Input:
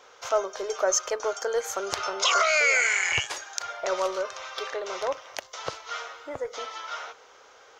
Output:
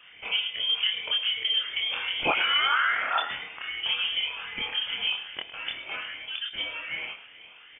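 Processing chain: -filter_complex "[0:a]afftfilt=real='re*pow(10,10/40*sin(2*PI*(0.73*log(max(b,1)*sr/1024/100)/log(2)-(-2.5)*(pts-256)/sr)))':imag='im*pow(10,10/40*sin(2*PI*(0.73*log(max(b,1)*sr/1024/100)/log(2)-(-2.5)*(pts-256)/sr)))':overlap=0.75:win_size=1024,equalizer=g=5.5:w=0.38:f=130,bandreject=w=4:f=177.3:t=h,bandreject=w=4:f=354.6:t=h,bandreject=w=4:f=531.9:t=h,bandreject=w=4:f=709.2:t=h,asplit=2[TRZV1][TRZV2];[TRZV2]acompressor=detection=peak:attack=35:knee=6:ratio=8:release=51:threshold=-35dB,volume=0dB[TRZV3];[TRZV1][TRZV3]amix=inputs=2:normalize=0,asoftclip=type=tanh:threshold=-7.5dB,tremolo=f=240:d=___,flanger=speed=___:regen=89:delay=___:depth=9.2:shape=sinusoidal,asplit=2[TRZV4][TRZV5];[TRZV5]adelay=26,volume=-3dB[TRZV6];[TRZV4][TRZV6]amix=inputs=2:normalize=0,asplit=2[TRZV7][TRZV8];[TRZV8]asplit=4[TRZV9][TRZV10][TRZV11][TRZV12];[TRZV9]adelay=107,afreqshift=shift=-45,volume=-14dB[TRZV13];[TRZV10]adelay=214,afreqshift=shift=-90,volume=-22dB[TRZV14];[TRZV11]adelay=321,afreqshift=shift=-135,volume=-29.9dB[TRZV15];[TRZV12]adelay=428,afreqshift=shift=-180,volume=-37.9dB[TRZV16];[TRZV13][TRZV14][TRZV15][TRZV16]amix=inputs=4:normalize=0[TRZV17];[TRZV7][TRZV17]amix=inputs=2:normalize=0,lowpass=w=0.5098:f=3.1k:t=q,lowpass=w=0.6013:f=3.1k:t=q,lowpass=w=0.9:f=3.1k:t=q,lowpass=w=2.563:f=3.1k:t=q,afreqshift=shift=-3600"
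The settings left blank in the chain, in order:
0.4, 0.45, 0.2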